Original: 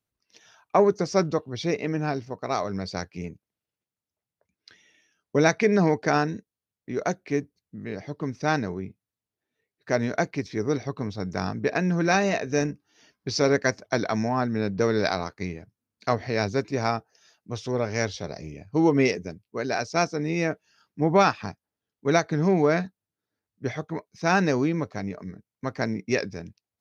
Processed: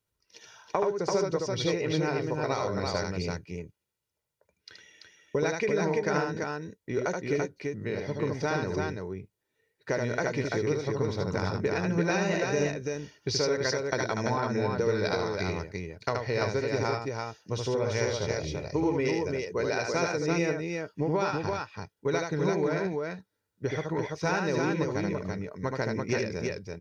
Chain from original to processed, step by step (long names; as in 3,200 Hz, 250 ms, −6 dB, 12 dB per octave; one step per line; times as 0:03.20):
comb filter 2.1 ms, depth 47%
downward compressor, threshold −28 dBFS, peak gain reduction 14.5 dB
on a send: multi-tap delay 76/337 ms −4/−3.5 dB
on the sum: level +1.5 dB